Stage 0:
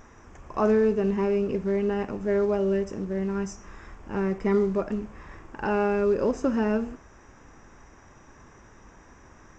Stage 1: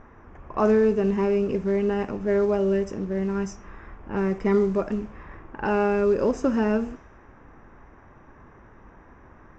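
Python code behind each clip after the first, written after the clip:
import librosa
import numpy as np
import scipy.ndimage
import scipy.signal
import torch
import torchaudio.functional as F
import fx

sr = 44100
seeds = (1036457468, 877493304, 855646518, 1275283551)

y = fx.env_lowpass(x, sr, base_hz=1700.0, full_db=-21.5)
y = F.gain(torch.from_numpy(y), 2.0).numpy()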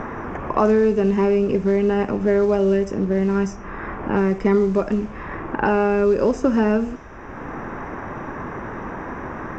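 y = fx.band_squash(x, sr, depth_pct=70)
y = F.gain(torch.from_numpy(y), 4.5).numpy()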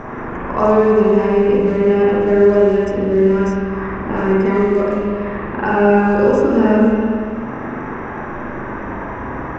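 y = fx.rev_spring(x, sr, rt60_s=2.3, pass_ms=(39, 47), chirp_ms=40, drr_db=-6.0)
y = F.gain(torch.from_numpy(y), -2.0).numpy()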